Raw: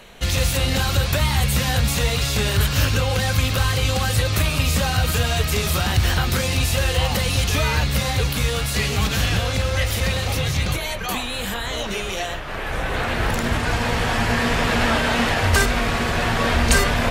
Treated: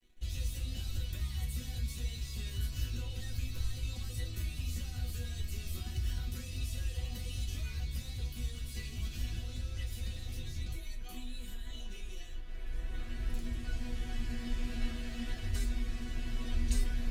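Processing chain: amplifier tone stack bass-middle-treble 10-0-1; crossover distortion -58 dBFS; chord resonator B3 sus4, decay 0.21 s; trim +15 dB

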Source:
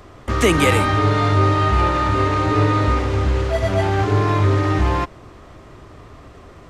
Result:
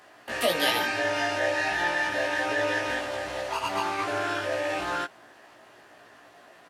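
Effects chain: high-pass 330 Hz 12 dB/octave; formant shift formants +6 st; doubling 17 ms -3 dB; trim -8.5 dB

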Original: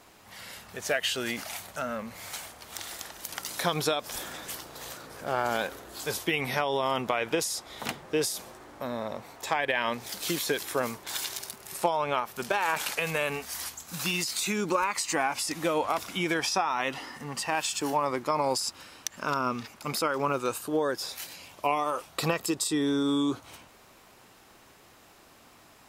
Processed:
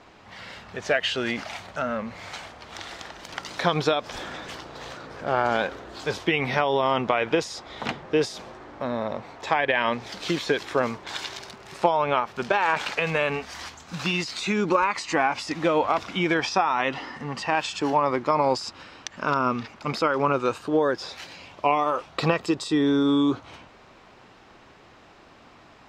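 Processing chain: distance through air 160 m; trim +6 dB

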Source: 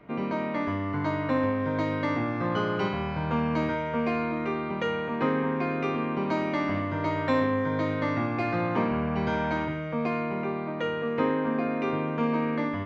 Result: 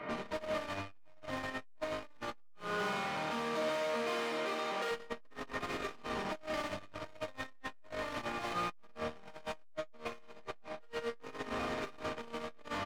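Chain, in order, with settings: dynamic bell 2 kHz, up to -5 dB, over -44 dBFS, Q 0.97; overdrive pedal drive 37 dB, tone 2.9 kHz, clips at -13.5 dBFS; 2.54–4.90 s: high-pass 100 Hz -> 330 Hz 12 dB/octave; feedback comb 610 Hz, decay 0.22 s, harmonics all, mix 80%; gain riding 2 s; peaking EQ 510 Hz -2.5 dB 1.4 oct; doubling 22 ms -10 dB; flutter echo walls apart 10.7 m, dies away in 0.64 s; transformer saturation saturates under 260 Hz; trim -3.5 dB

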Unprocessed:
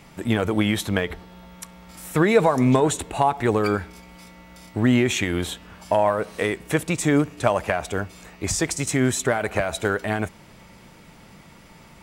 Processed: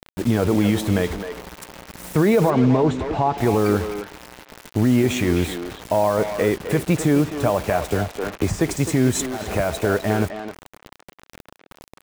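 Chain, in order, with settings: tilt shelf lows +5.5 dB, about 1.1 kHz; peak limiter -10.5 dBFS, peak gain reduction 8.5 dB; 9.15–9.55 s: compressor with a negative ratio -28 dBFS, ratio -0.5; bit crusher 6-bit; 2.50–3.38 s: distance through air 170 m; speakerphone echo 260 ms, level -6 dB; 7.92–8.61 s: three bands compressed up and down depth 100%; trim +1.5 dB

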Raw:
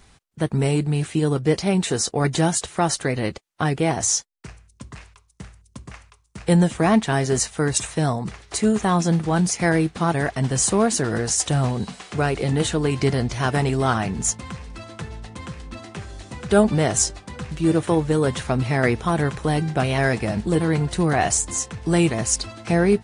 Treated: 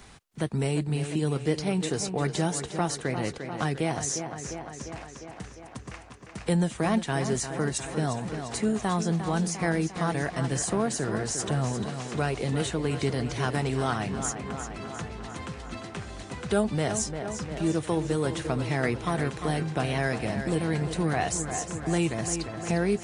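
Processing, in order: tape echo 351 ms, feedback 65%, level -9 dB, low-pass 5 kHz; three bands compressed up and down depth 40%; trim -7.5 dB

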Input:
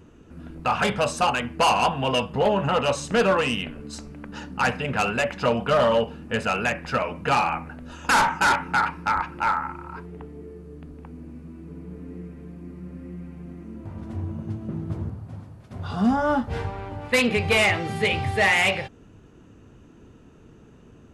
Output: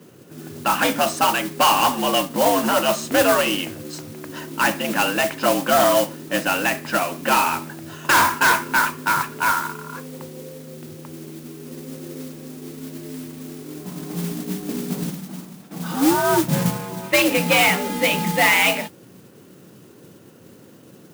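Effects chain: 16.32–16.77 s: bass shelf 200 Hz +8 dB; frequency shift +81 Hz; modulation noise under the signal 10 dB; trim +3 dB

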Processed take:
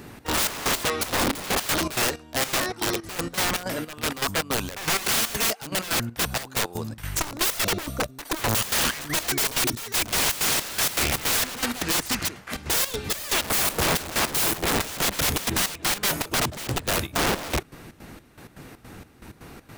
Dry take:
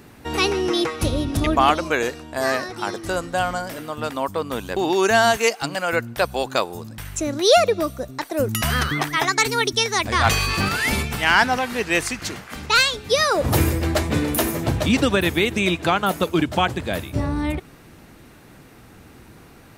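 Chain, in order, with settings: integer overflow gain 21 dB; trance gate "xx.xx..x." 160 bpm -12 dB; trim +3.5 dB

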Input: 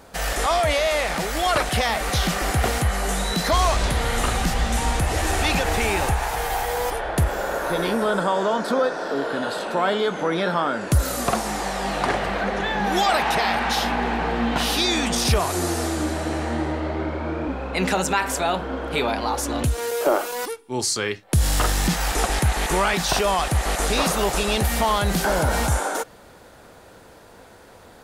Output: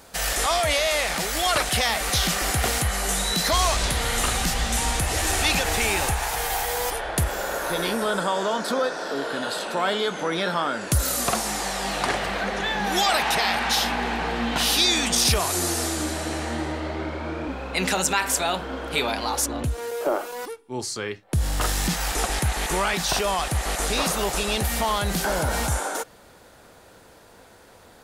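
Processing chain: treble shelf 2.3 kHz +9.5 dB, from 19.46 s -4.5 dB, from 21.61 s +4 dB; trim -4 dB

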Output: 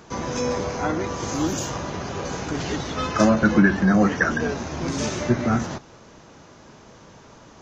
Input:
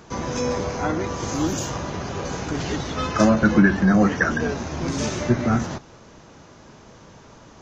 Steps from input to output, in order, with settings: bass shelf 130 Hz -3.5 dB

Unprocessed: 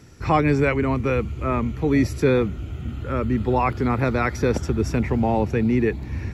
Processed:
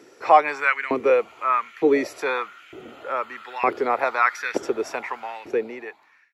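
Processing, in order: fade out at the end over 1.24 s; tone controls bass -6 dB, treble -4 dB; LFO high-pass saw up 1.1 Hz 340–2000 Hz; trim +1 dB

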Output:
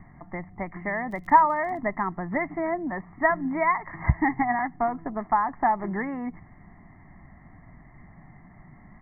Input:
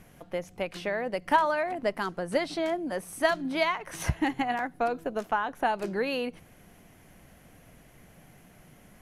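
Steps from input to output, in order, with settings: steep low-pass 2.1 kHz 96 dB/octave; comb 1 ms, depth 85%; 1.10–1.77 s: crackle 67 per s -> 16 per s -41 dBFS; trim +2 dB

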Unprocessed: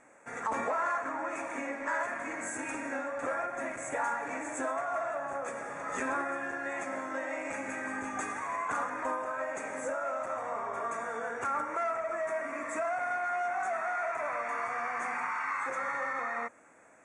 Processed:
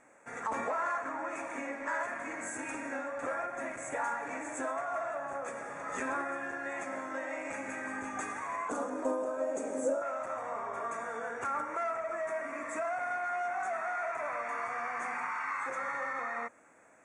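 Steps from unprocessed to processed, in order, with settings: 8.69–10.02 s: ten-band graphic EQ 125 Hz -9 dB, 250 Hz +10 dB, 500 Hz +8 dB, 1 kHz -4 dB, 2 kHz -11 dB, 8 kHz +4 dB; trim -2 dB

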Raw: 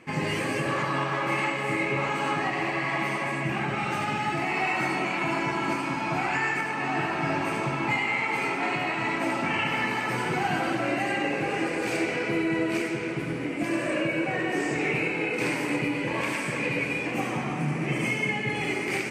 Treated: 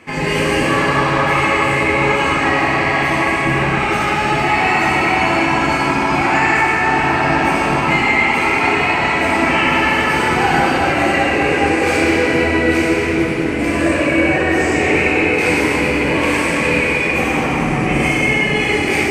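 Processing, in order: octave divider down 2 oct, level 0 dB; high-pass 250 Hz 6 dB/octave; reverberation RT60 3.3 s, pre-delay 7 ms, DRR -3.5 dB; trim +8 dB

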